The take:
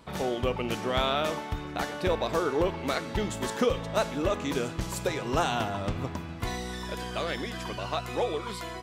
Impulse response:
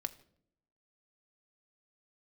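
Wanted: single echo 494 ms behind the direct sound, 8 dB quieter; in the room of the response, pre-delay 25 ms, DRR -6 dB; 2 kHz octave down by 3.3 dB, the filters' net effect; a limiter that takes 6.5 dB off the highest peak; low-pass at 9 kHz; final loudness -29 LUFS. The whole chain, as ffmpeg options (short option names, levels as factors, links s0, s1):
-filter_complex "[0:a]lowpass=9000,equalizer=f=2000:t=o:g=-4.5,alimiter=limit=0.0841:level=0:latency=1,aecho=1:1:494:0.398,asplit=2[s0][s1];[1:a]atrim=start_sample=2205,adelay=25[s2];[s1][s2]afir=irnorm=-1:irlink=0,volume=2.24[s3];[s0][s3]amix=inputs=2:normalize=0,volume=0.631"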